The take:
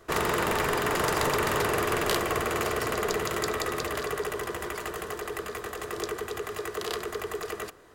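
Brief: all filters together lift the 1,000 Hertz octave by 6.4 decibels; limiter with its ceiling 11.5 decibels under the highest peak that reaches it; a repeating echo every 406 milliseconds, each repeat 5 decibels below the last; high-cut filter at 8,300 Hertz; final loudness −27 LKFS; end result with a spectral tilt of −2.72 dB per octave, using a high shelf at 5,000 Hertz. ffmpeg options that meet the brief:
ffmpeg -i in.wav -af "lowpass=8300,equalizer=frequency=1000:width_type=o:gain=8,highshelf=frequency=5000:gain=-5.5,alimiter=limit=-20.5dB:level=0:latency=1,aecho=1:1:406|812|1218|1624|2030|2436|2842:0.562|0.315|0.176|0.0988|0.0553|0.031|0.0173,volume=2dB" out.wav

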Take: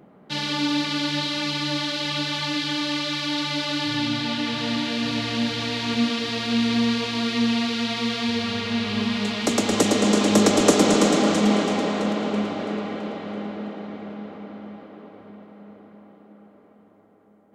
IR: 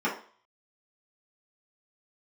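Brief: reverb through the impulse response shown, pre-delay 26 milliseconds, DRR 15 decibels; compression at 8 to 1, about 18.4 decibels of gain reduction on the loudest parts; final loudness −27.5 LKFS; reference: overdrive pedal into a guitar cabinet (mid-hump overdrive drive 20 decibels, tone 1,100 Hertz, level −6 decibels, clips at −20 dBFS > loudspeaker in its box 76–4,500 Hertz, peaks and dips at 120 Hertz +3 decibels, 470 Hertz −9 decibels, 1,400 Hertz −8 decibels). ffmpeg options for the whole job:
-filter_complex "[0:a]acompressor=threshold=-33dB:ratio=8,asplit=2[link_01][link_02];[1:a]atrim=start_sample=2205,adelay=26[link_03];[link_02][link_03]afir=irnorm=-1:irlink=0,volume=-26.5dB[link_04];[link_01][link_04]amix=inputs=2:normalize=0,asplit=2[link_05][link_06];[link_06]highpass=frequency=720:poles=1,volume=20dB,asoftclip=type=tanh:threshold=-20dB[link_07];[link_05][link_07]amix=inputs=2:normalize=0,lowpass=frequency=1100:poles=1,volume=-6dB,highpass=76,equalizer=frequency=120:width_type=q:width=4:gain=3,equalizer=frequency=470:width_type=q:width=4:gain=-9,equalizer=frequency=1400:width_type=q:width=4:gain=-8,lowpass=frequency=4500:width=0.5412,lowpass=frequency=4500:width=1.3066,volume=6dB"

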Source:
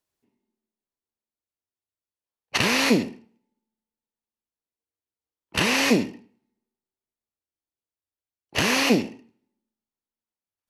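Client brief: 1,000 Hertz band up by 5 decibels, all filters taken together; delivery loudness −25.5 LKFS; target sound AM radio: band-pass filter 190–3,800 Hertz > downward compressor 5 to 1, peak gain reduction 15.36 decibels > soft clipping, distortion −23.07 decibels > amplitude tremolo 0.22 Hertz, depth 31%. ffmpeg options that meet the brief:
ffmpeg -i in.wav -af "highpass=190,lowpass=3800,equalizer=frequency=1000:width_type=o:gain=6,acompressor=threshold=-32dB:ratio=5,asoftclip=threshold=-22dB,tremolo=f=0.22:d=0.31,volume=11dB" out.wav

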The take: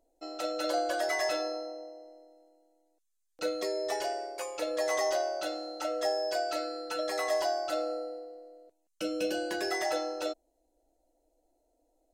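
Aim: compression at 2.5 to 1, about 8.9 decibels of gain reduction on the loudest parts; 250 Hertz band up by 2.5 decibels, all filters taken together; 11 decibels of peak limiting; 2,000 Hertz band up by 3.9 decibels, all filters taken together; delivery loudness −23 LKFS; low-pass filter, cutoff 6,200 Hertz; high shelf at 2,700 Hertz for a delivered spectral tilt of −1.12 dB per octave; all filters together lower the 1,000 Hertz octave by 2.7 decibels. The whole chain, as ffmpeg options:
ffmpeg -i in.wav -af "lowpass=6200,equalizer=frequency=250:width_type=o:gain=4,equalizer=frequency=1000:width_type=o:gain=-7,equalizer=frequency=2000:width_type=o:gain=4,highshelf=frequency=2700:gain=6.5,acompressor=threshold=-40dB:ratio=2.5,volume=22.5dB,alimiter=limit=-15dB:level=0:latency=1" out.wav

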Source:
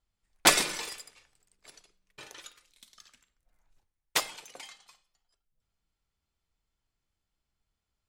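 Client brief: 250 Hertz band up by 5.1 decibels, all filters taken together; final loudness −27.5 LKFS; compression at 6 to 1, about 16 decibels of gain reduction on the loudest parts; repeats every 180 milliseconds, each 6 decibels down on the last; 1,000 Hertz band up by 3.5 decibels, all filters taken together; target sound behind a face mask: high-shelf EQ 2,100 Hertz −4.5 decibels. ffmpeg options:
ffmpeg -i in.wav -af "equalizer=frequency=250:width_type=o:gain=7,equalizer=frequency=1000:width_type=o:gain=5,acompressor=threshold=-31dB:ratio=6,highshelf=frequency=2100:gain=-4.5,aecho=1:1:180|360|540|720|900|1080:0.501|0.251|0.125|0.0626|0.0313|0.0157,volume=14dB" out.wav

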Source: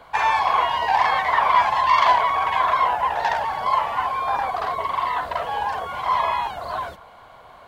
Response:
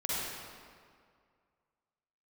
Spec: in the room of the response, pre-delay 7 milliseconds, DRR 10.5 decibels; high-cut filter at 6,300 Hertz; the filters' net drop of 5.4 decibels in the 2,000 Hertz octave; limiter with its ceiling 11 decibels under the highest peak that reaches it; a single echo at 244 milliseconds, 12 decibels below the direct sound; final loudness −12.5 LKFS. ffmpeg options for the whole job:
-filter_complex "[0:a]lowpass=6300,equalizer=frequency=2000:width_type=o:gain=-6.5,alimiter=limit=-17.5dB:level=0:latency=1,aecho=1:1:244:0.251,asplit=2[link_01][link_02];[1:a]atrim=start_sample=2205,adelay=7[link_03];[link_02][link_03]afir=irnorm=-1:irlink=0,volume=-17dB[link_04];[link_01][link_04]amix=inputs=2:normalize=0,volume=13dB"

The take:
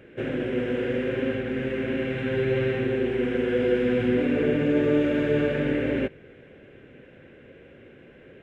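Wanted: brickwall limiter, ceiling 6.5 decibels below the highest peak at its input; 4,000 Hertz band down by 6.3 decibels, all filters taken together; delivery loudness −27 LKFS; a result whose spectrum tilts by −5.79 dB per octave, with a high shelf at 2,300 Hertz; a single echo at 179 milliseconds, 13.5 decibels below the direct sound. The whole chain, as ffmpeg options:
ffmpeg -i in.wav -af "highshelf=frequency=2300:gain=-5,equalizer=frequency=4000:width_type=o:gain=-5,alimiter=limit=-18dB:level=0:latency=1,aecho=1:1:179:0.211" out.wav

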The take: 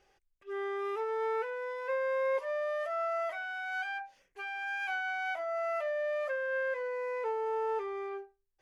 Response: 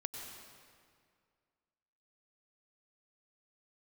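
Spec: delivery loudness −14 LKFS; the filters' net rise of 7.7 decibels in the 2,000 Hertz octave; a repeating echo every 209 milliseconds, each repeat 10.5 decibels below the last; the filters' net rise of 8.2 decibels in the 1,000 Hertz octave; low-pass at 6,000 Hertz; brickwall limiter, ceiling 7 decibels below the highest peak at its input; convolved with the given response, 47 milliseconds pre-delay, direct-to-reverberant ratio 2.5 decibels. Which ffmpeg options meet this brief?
-filter_complex "[0:a]lowpass=6000,equalizer=frequency=1000:width_type=o:gain=9,equalizer=frequency=2000:width_type=o:gain=6.5,alimiter=level_in=1.5dB:limit=-24dB:level=0:latency=1,volume=-1.5dB,aecho=1:1:209|418|627:0.299|0.0896|0.0269,asplit=2[link_01][link_02];[1:a]atrim=start_sample=2205,adelay=47[link_03];[link_02][link_03]afir=irnorm=-1:irlink=0,volume=-2dB[link_04];[link_01][link_04]amix=inputs=2:normalize=0,volume=15.5dB"

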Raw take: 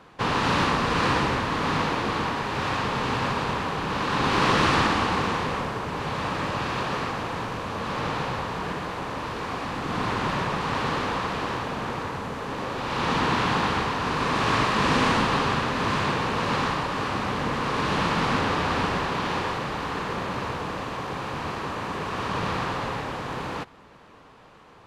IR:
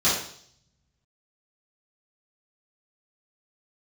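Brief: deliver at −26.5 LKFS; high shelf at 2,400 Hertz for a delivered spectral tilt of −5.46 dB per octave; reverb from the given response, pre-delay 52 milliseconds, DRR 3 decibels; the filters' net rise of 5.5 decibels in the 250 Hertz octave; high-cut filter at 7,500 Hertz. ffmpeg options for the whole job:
-filter_complex "[0:a]lowpass=7500,equalizer=frequency=250:width_type=o:gain=7,highshelf=frequency=2400:gain=-8.5,asplit=2[link_01][link_02];[1:a]atrim=start_sample=2205,adelay=52[link_03];[link_02][link_03]afir=irnorm=-1:irlink=0,volume=-18.5dB[link_04];[link_01][link_04]amix=inputs=2:normalize=0,volume=-3.5dB"

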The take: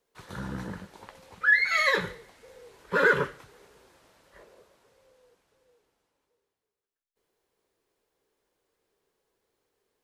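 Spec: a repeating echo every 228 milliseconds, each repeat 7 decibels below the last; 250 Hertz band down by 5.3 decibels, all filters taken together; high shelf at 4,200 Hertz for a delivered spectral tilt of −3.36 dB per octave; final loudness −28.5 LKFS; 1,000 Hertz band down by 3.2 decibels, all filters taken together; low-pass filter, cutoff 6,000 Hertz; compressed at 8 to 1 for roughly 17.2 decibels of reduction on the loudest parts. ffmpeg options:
ffmpeg -i in.wav -af "lowpass=6000,equalizer=frequency=250:width_type=o:gain=-8.5,equalizer=frequency=1000:width_type=o:gain=-3.5,highshelf=frequency=4200:gain=-6.5,acompressor=threshold=-37dB:ratio=8,aecho=1:1:228|456|684|912|1140:0.447|0.201|0.0905|0.0407|0.0183,volume=13.5dB" out.wav

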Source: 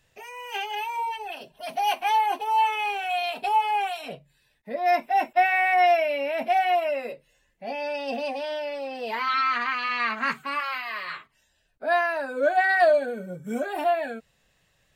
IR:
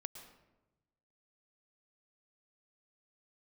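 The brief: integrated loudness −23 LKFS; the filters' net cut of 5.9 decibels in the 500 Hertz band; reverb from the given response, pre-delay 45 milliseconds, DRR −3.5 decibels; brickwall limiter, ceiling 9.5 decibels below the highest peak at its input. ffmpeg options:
-filter_complex "[0:a]equalizer=frequency=500:width_type=o:gain=-9,alimiter=limit=-22.5dB:level=0:latency=1,asplit=2[link_01][link_02];[1:a]atrim=start_sample=2205,adelay=45[link_03];[link_02][link_03]afir=irnorm=-1:irlink=0,volume=7dB[link_04];[link_01][link_04]amix=inputs=2:normalize=0,volume=3dB"

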